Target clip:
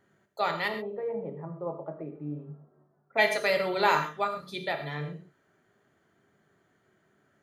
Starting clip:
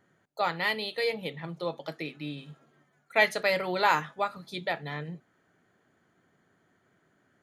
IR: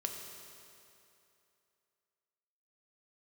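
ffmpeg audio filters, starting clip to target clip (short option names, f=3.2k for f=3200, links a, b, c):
-filter_complex "[0:a]asplit=3[a][b][c];[a]afade=t=out:st=0.67:d=0.02[d];[b]lowpass=f=1.1k:w=0.5412,lowpass=f=1.1k:w=1.3066,afade=t=in:st=0.67:d=0.02,afade=t=out:st=3.17:d=0.02[e];[c]afade=t=in:st=3.17:d=0.02[f];[d][e][f]amix=inputs=3:normalize=0[g];[1:a]atrim=start_sample=2205,atrim=end_sample=6174[h];[g][h]afir=irnorm=-1:irlink=0"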